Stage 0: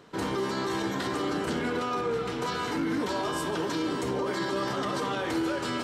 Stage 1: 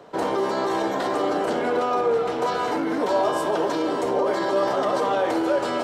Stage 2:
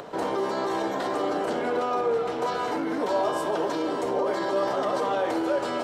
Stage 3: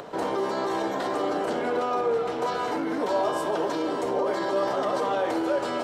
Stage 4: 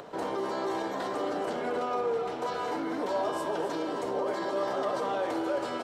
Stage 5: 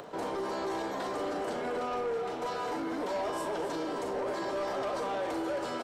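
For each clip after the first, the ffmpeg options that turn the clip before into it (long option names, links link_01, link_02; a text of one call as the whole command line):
ffmpeg -i in.wav -filter_complex "[0:a]equalizer=frequency=650:width=1.1:gain=14.5,acrossover=split=200|960[link_01][link_02][link_03];[link_01]alimiter=level_in=15.5dB:limit=-24dB:level=0:latency=1:release=372,volume=-15.5dB[link_04];[link_04][link_02][link_03]amix=inputs=3:normalize=0" out.wav
ffmpeg -i in.wav -af "acompressor=mode=upward:threshold=-28dB:ratio=2.5,volume=-3.5dB" out.wav
ffmpeg -i in.wav -af anull out.wav
ffmpeg -i in.wav -af "aecho=1:1:265:0.299,volume=-5dB" out.wav
ffmpeg -i in.wav -filter_complex "[0:a]acrossover=split=4800[link_01][link_02];[link_01]asoftclip=type=tanh:threshold=-28dB[link_03];[link_02]asplit=2[link_04][link_05];[link_05]adelay=39,volume=-5dB[link_06];[link_04][link_06]amix=inputs=2:normalize=0[link_07];[link_03][link_07]amix=inputs=2:normalize=0" out.wav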